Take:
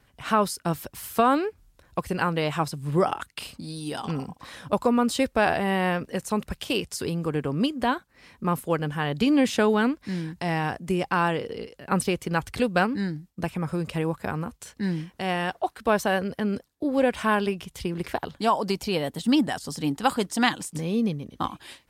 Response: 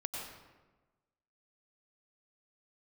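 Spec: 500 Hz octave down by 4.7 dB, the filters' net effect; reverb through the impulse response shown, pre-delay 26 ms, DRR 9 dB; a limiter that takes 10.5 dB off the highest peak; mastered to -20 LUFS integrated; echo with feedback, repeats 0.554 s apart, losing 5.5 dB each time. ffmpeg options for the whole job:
-filter_complex "[0:a]equalizer=f=500:t=o:g=-6,alimiter=limit=-18dB:level=0:latency=1,aecho=1:1:554|1108|1662|2216|2770|3324|3878:0.531|0.281|0.149|0.079|0.0419|0.0222|0.0118,asplit=2[a][b];[1:a]atrim=start_sample=2205,adelay=26[c];[b][c]afir=irnorm=-1:irlink=0,volume=-10.5dB[d];[a][d]amix=inputs=2:normalize=0,volume=8.5dB"

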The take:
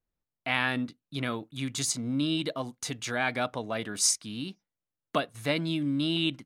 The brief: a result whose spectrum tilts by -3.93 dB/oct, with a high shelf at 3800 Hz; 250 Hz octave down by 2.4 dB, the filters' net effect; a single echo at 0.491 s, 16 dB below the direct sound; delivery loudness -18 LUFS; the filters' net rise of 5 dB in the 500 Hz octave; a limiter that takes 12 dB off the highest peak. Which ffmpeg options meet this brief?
-af "equalizer=f=250:t=o:g=-6,equalizer=f=500:t=o:g=8,highshelf=f=3.8k:g=-5,alimiter=limit=-23dB:level=0:latency=1,aecho=1:1:491:0.158,volume=16.5dB"

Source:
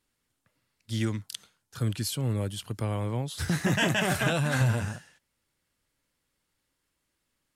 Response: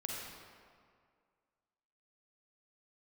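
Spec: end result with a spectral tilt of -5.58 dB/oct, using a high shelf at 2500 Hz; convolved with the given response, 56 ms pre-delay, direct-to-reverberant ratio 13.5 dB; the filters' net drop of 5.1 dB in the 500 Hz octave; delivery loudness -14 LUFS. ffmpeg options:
-filter_complex "[0:a]equalizer=f=500:t=o:g=-6.5,highshelf=f=2.5k:g=-5.5,asplit=2[a][b];[1:a]atrim=start_sample=2205,adelay=56[c];[b][c]afir=irnorm=-1:irlink=0,volume=-14.5dB[d];[a][d]amix=inputs=2:normalize=0,volume=16dB"

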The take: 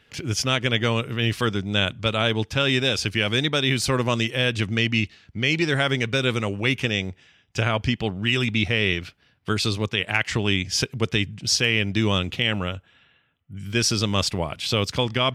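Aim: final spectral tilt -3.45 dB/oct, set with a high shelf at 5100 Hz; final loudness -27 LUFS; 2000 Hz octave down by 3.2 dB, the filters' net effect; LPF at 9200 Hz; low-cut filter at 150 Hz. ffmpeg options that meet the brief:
-af "highpass=150,lowpass=9.2k,equalizer=f=2k:t=o:g=-5,highshelf=f=5.1k:g=4,volume=-3dB"

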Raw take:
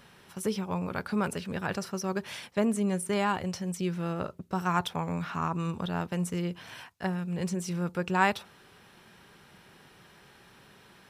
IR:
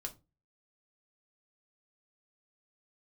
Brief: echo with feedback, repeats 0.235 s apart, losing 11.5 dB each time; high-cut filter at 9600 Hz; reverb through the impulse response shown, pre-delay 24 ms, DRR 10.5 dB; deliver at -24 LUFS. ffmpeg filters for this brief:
-filter_complex "[0:a]lowpass=9.6k,aecho=1:1:235|470|705:0.266|0.0718|0.0194,asplit=2[a][b];[1:a]atrim=start_sample=2205,adelay=24[c];[b][c]afir=irnorm=-1:irlink=0,volume=-8.5dB[d];[a][d]amix=inputs=2:normalize=0,volume=7dB"

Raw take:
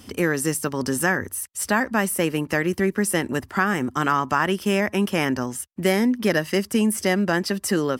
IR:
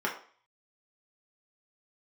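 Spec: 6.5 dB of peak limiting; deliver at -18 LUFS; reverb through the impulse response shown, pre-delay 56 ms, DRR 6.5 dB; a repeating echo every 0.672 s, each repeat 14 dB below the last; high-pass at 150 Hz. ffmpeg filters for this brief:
-filter_complex "[0:a]highpass=150,alimiter=limit=-12.5dB:level=0:latency=1,aecho=1:1:672|1344:0.2|0.0399,asplit=2[a][b];[1:a]atrim=start_sample=2205,adelay=56[c];[b][c]afir=irnorm=-1:irlink=0,volume=-15.5dB[d];[a][d]amix=inputs=2:normalize=0,volume=5.5dB"

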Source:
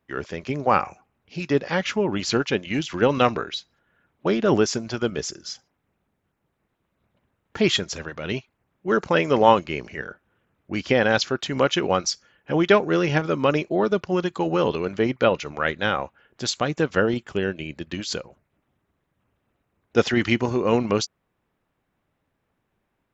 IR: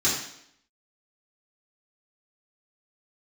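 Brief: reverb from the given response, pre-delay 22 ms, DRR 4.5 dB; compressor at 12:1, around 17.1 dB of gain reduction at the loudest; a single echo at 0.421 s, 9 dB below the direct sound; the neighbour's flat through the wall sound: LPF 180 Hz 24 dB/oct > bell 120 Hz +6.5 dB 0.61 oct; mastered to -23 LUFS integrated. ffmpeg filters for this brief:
-filter_complex "[0:a]acompressor=threshold=-28dB:ratio=12,aecho=1:1:421:0.355,asplit=2[a][b];[1:a]atrim=start_sample=2205,adelay=22[c];[b][c]afir=irnorm=-1:irlink=0,volume=-17.5dB[d];[a][d]amix=inputs=2:normalize=0,lowpass=f=180:w=0.5412,lowpass=f=180:w=1.3066,equalizer=f=120:t=o:w=0.61:g=6.5,volume=15.5dB"

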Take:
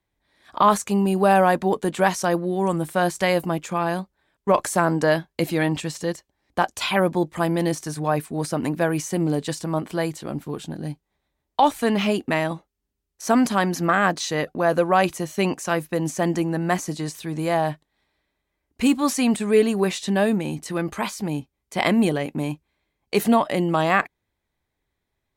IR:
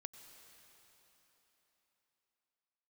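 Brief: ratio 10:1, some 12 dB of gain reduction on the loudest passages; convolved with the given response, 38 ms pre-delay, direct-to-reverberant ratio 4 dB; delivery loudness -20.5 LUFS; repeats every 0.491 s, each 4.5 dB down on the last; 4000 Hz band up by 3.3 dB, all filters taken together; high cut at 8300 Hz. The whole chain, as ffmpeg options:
-filter_complex "[0:a]lowpass=8.3k,equalizer=f=4k:t=o:g=4.5,acompressor=threshold=-24dB:ratio=10,aecho=1:1:491|982|1473|1964|2455|2946|3437|3928|4419:0.596|0.357|0.214|0.129|0.0772|0.0463|0.0278|0.0167|0.01,asplit=2[a][b];[1:a]atrim=start_sample=2205,adelay=38[c];[b][c]afir=irnorm=-1:irlink=0,volume=1dB[d];[a][d]amix=inputs=2:normalize=0,volume=6.5dB"

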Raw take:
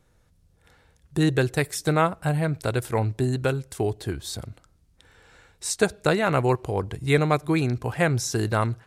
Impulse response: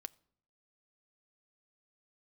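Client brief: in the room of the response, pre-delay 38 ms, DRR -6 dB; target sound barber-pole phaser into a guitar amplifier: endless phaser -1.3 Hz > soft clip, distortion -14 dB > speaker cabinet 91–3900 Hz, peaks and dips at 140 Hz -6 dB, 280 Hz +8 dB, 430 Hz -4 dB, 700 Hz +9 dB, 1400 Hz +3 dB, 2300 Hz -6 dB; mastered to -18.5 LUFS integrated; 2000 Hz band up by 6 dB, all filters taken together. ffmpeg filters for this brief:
-filter_complex "[0:a]equalizer=f=2k:t=o:g=8,asplit=2[a][b];[1:a]atrim=start_sample=2205,adelay=38[c];[b][c]afir=irnorm=-1:irlink=0,volume=10.5dB[d];[a][d]amix=inputs=2:normalize=0,asplit=2[e][f];[f]afreqshift=-1.3[g];[e][g]amix=inputs=2:normalize=1,asoftclip=threshold=-11dB,highpass=91,equalizer=f=140:t=q:w=4:g=-6,equalizer=f=280:t=q:w=4:g=8,equalizer=f=430:t=q:w=4:g=-4,equalizer=f=700:t=q:w=4:g=9,equalizer=f=1.4k:t=q:w=4:g=3,equalizer=f=2.3k:t=q:w=4:g=-6,lowpass=f=3.9k:w=0.5412,lowpass=f=3.9k:w=1.3066,volume=2.5dB"

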